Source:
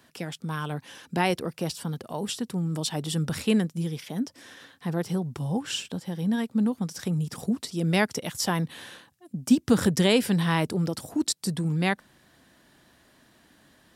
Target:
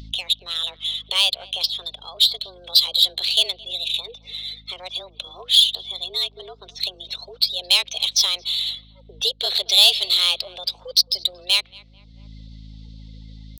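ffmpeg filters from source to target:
ffmpeg -i in.wav -filter_complex "[0:a]highpass=frequency=300:width_type=q:width=0.5412,highpass=frequency=300:width_type=q:width=1.307,lowpass=frequency=3400:width_type=q:width=0.5176,lowpass=frequency=3400:width_type=q:width=0.7071,lowpass=frequency=3400:width_type=q:width=1.932,afreqshift=170,aeval=exprs='val(0)+0.00501*(sin(2*PI*50*n/s)+sin(2*PI*2*50*n/s)/2+sin(2*PI*3*50*n/s)/3+sin(2*PI*4*50*n/s)/4+sin(2*PI*5*50*n/s)/5)':channel_layout=same,afftdn=noise_reduction=28:noise_floor=-50,asplit=2[link_01][link_02];[link_02]adelay=227,lowpass=frequency=990:poles=1,volume=-21dB,asplit=2[link_03][link_04];[link_04]adelay=227,lowpass=frequency=990:poles=1,volume=0.46,asplit=2[link_05][link_06];[link_06]adelay=227,lowpass=frequency=990:poles=1,volume=0.46[link_07];[link_01][link_03][link_05][link_07]amix=inputs=4:normalize=0,asplit=2[link_08][link_09];[link_09]acompressor=threshold=-42dB:ratio=8,volume=0dB[link_10];[link_08][link_10]amix=inputs=2:normalize=0,crystalizer=i=9.5:c=0,aemphasis=mode=production:type=75fm,aexciter=amount=13.6:drive=9.8:freq=2800,asetrate=47187,aresample=44100,acompressor=mode=upward:threshold=-21dB:ratio=2.5,atempo=0.96,tiltshelf=frequency=970:gain=6.5,volume=-13.5dB" out.wav

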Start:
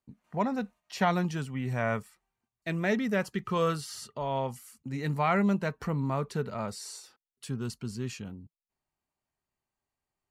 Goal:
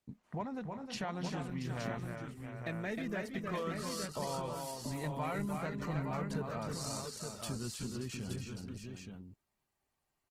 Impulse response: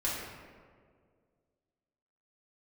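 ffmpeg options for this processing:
-af "acompressor=threshold=-40dB:ratio=4,aecho=1:1:313|346|679|869:0.562|0.237|0.335|0.501,volume=1.5dB" -ar 48000 -c:a libopus -b:a 16k

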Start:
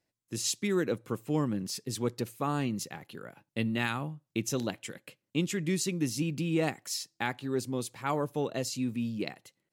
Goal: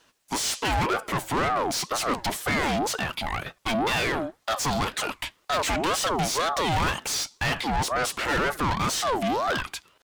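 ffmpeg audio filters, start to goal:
ffmpeg -i in.wav -filter_complex "[0:a]asplit=2[link_01][link_02];[link_02]highpass=frequency=720:poles=1,volume=34dB,asoftclip=type=tanh:threshold=-14.5dB[link_03];[link_01][link_03]amix=inputs=2:normalize=0,lowpass=frequency=4800:poles=1,volume=-6dB,atempo=0.97,aeval=exprs='val(0)*sin(2*PI*720*n/s+720*0.4/2*sin(2*PI*2*n/s))':channel_layout=same" out.wav

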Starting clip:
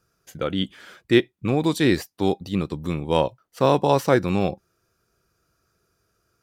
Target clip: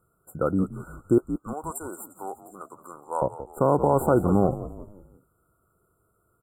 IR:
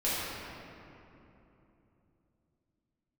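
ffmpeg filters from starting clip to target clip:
-filter_complex "[0:a]asettb=1/sr,asplit=3[link_01][link_02][link_03];[link_01]atrim=end=1.184[link_04];[link_02]atrim=start=1.18:end=3.22,asetpts=PTS-STARTPTS,afade=type=in:duration=0.004:curve=qsin,afade=type=out:start_time=2.036:duration=0.004:curve=qsin,highpass=1100[link_05];[link_03]atrim=start=3.216[link_06];[link_04][link_05]acrossfade=duration=0.004:curve1=hsin:curve2=qsin[link_07];[link_07][link_06]acrossfade=duration=0.004:curve1=qsin:curve2=hsin,afftfilt=real='re*(1-between(b*sr/4096,1500,7200))':imag='im*(1-between(b*sr/4096,1500,7200))':win_size=4096:overlap=0.75,asplit=5[link_08][link_09][link_10][link_11][link_12];[link_09]adelay=174,afreqshift=-65,volume=-14dB[link_13];[link_10]adelay=348,afreqshift=-130,volume=-20.6dB[link_14];[link_11]adelay=522,afreqshift=-195,volume=-27.1dB[link_15];[link_12]adelay=696,afreqshift=-260,volume=-33.7dB[link_16];[link_08][link_13][link_14][link_15][link_16]amix=inputs=5:normalize=0,alimiter=level_in=10dB:limit=-1dB:release=50:level=0:latency=1,volume=-8.5dB"

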